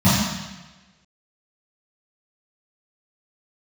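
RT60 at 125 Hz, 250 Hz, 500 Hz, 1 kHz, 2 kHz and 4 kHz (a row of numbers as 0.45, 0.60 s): 1.2, 1.0, 1.2, 1.1, 1.3, 1.2 s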